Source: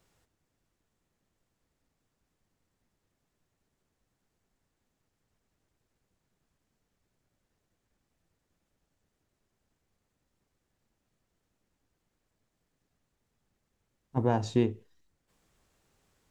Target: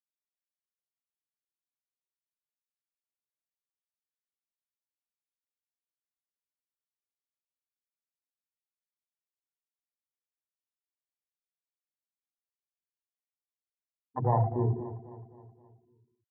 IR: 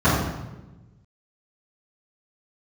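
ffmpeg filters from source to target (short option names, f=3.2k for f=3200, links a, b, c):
-filter_complex "[0:a]equalizer=f=65:t=o:w=2.4:g=-6,asplit=2[a][b];[1:a]atrim=start_sample=2205,afade=t=out:st=0.38:d=0.01,atrim=end_sample=17199[c];[b][c]afir=irnorm=-1:irlink=0,volume=-26dB[d];[a][d]amix=inputs=2:normalize=0,afftfilt=real='re*gte(hypot(re,im),0.0891)':imag='im*gte(hypot(re,im),0.0891)':win_size=1024:overlap=0.75,afwtdn=0.0126,equalizer=f=125:t=o:w=1:g=4,equalizer=f=250:t=o:w=1:g=-11,equalizer=f=1k:t=o:w=1:g=10,equalizer=f=4k:t=o:w=1:g=-6,aecho=1:1:263|526|789|1052|1315:0.188|0.0923|0.0452|0.0222|0.0109,volume=-2dB"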